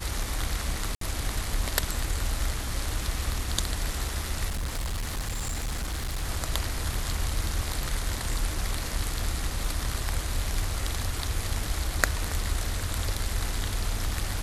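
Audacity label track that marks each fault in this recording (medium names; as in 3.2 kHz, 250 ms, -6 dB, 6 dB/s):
0.950000	1.010000	dropout 63 ms
4.480000	6.240000	clipped -27 dBFS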